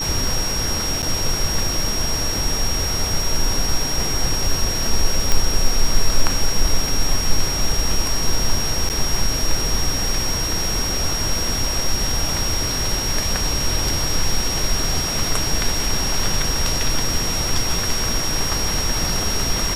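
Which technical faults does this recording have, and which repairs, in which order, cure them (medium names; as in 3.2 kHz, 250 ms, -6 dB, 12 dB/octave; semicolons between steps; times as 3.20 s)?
whine 5.6 kHz -23 dBFS
1.02–1.03 s: dropout 8.4 ms
5.32 s: pop -2 dBFS
8.89–8.90 s: dropout 9 ms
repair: de-click; band-stop 5.6 kHz, Q 30; interpolate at 1.02 s, 8.4 ms; interpolate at 8.89 s, 9 ms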